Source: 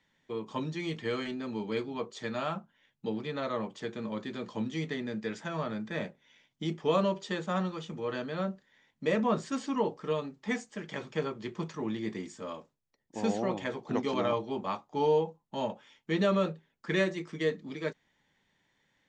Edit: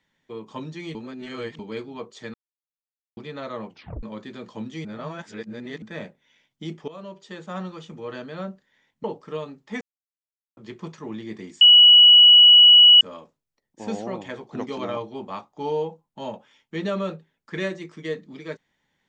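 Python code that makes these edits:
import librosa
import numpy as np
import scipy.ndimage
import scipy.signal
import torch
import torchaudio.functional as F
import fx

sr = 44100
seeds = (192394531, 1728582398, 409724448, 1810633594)

y = fx.edit(x, sr, fx.reverse_span(start_s=0.95, length_s=0.64),
    fx.silence(start_s=2.34, length_s=0.83),
    fx.tape_stop(start_s=3.69, length_s=0.34),
    fx.reverse_span(start_s=4.85, length_s=0.97),
    fx.fade_in_from(start_s=6.88, length_s=0.84, floor_db=-19.0),
    fx.cut(start_s=9.04, length_s=0.76),
    fx.silence(start_s=10.57, length_s=0.76),
    fx.insert_tone(at_s=12.37, length_s=1.4, hz=2930.0, db=-7.5), tone=tone)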